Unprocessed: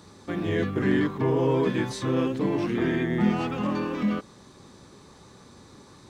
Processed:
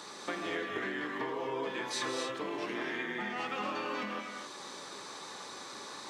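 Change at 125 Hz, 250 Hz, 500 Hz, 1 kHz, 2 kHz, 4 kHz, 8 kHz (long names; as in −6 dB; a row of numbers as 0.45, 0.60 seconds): −24.5, −16.0, −11.0, −3.5, −2.0, +0.5, +2.5 decibels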